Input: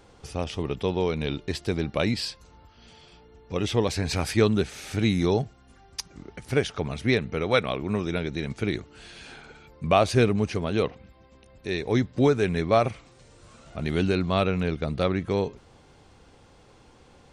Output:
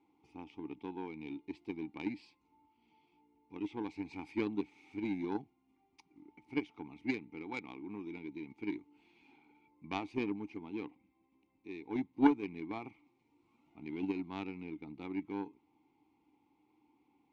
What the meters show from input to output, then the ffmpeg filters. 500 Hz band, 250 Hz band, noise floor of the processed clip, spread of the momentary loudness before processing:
-19.5 dB, -9.5 dB, -76 dBFS, 15 LU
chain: -filter_complex "[0:a]asplit=3[a][b][c];[a]bandpass=f=300:t=q:w=8,volume=0dB[d];[b]bandpass=f=870:t=q:w=8,volume=-6dB[e];[c]bandpass=f=2.24k:t=q:w=8,volume=-9dB[f];[d][e][f]amix=inputs=3:normalize=0,aeval=exprs='0.126*(cos(1*acos(clip(val(0)/0.126,-1,1)))-cos(1*PI/2))+0.0316*(cos(3*acos(clip(val(0)/0.126,-1,1)))-cos(3*PI/2))+0.00141*(cos(5*acos(clip(val(0)/0.126,-1,1)))-cos(5*PI/2))+0.001*(cos(7*acos(clip(val(0)/0.126,-1,1)))-cos(7*PI/2))':c=same,volume=6.5dB"

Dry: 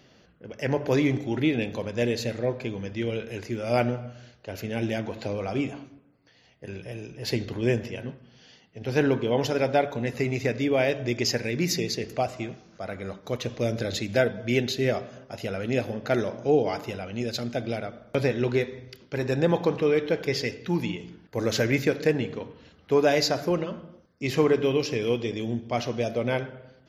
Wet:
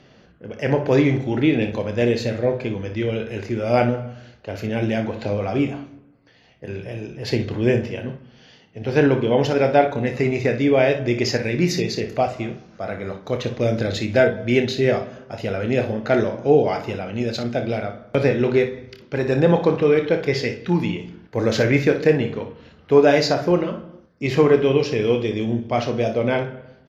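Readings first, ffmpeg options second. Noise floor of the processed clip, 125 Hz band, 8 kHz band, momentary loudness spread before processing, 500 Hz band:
-52 dBFS, +6.5 dB, -1.0 dB, 13 LU, +7.0 dB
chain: -af "aemphasis=mode=reproduction:type=50fm,aecho=1:1:28|59:0.355|0.282,volume=5.5dB"

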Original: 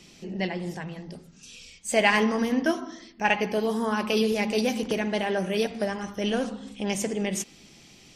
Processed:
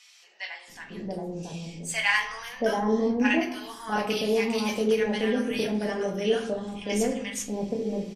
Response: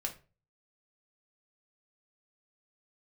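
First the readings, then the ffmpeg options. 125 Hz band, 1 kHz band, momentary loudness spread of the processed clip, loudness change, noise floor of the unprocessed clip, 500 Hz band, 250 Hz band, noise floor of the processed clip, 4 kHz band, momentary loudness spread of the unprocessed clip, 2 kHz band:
-1.5 dB, -2.5 dB, 14 LU, -1.0 dB, -53 dBFS, +0.5 dB, -0.5 dB, -53 dBFS, -1.0 dB, 15 LU, -0.5 dB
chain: -filter_complex "[0:a]acrossover=split=930[a][b];[a]adelay=680[c];[c][b]amix=inputs=2:normalize=0[d];[1:a]atrim=start_sample=2205,asetrate=34839,aresample=44100[e];[d][e]afir=irnorm=-1:irlink=0,volume=-2.5dB"

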